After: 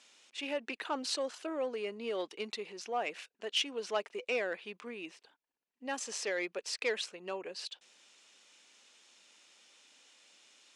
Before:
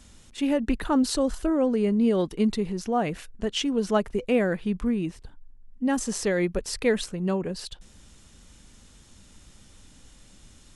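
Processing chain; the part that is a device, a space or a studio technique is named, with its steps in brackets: intercom (band-pass 370–3800 Hz; peaking EQ 2.5 kHz +7 dB 0.56 oct; saturation -14.5 dBFS, distortion -22 dB); tone controls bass -15 dB, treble +13 dB; trim -7 dB

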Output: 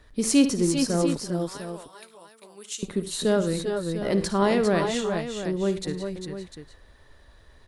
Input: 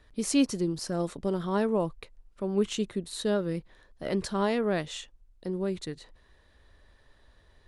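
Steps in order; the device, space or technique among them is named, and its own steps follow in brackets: 1.18–2.83 s: differentiator; exciter from parts (in parallel at -11 dB: high-pass 2.8 kHz 12 dB/octave + saturation -30 dBFS, distortion -13 dB + high-pass 2.3 kHz); on the sum: multi-tap echo 56/74/105/392/404/700 ms -14/-17/-19.5/-11.5/-6.5/-11 dB; trim +5 dB

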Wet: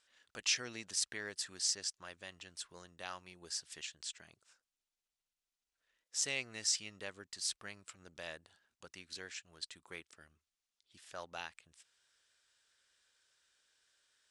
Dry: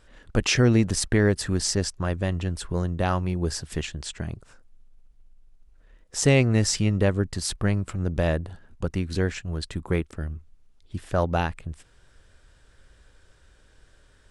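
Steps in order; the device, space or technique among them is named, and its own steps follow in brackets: piezo pickup straight into a mixer (low-pass 6.1 kHz 12 dB/octave; differentiator); trim -2 dB

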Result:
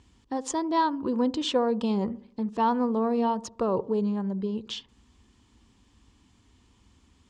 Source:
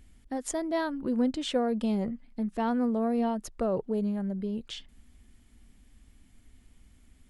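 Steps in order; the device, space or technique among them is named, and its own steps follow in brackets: car door speaker (cabinet simulation 91–7000 Hz, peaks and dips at 160 Hz -7 dB, 240 Hz -5 dB, 640 Hz -9 dB, 1 kHz +9 dB, 1.5 kHz -5 dB, 2.1 kHz -8 dB); feedback echo behind a low-pass 72 ms, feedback 45%, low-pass 670 Hz, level -16 dB; trim +5.5 dB

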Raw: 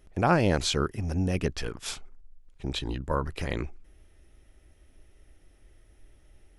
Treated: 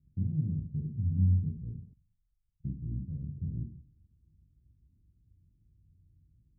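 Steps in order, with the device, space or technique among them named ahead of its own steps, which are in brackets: high-pass 130 Hz 12 dB/octave; club heard from the street (peak limiter -20 dBFS, peak gain reduction 11.5 dB; low-pass 150 Hz 24 dB/octave; reverberation RT60 0.55 s, pre-delay 20 ms, DRR 0 dB); 1.93–2.65 s: amplifier tone stack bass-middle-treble 10-0-1; trim +6 dB

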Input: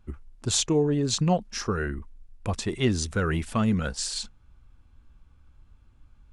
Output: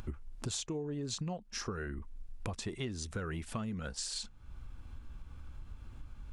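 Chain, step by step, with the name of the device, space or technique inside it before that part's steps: upward and downward compression (upward compressor, threshold -39 dBFS; compression 8:1, threshold -38 dBFS, peak gain reduction 19.5 dB); trim +2 dB

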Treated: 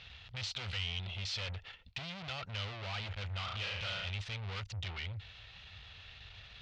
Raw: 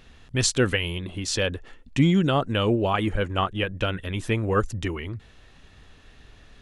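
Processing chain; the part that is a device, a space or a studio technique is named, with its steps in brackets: 3.44–4.10 s: flutter echo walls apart 6.1 m, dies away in 0.58 s; scooped metal amplifier (valve stage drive 39 dB, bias 0.25; cabinet simulation 76–4200 Hz, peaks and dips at 100 Hz +6 dB, 1.1 kHz -5 dB, 1.7 kHz -7 dB; amplifier tone stack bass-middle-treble 10-0-10); trim +10.5 dB

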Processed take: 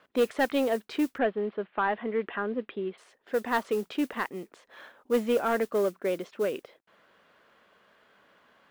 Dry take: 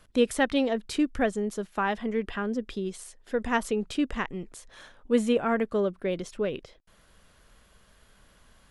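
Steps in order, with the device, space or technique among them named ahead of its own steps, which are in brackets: carbon microphone (band-pass 310–2600 Hz; saturation -19 dBFS, distortion -16 dB; modulation noise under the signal 23 dB); 1.18–2.98 s: inverse Chebyshev low-pass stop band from 6.2 kHz, stop band 40 dB; trim +2.5 dB

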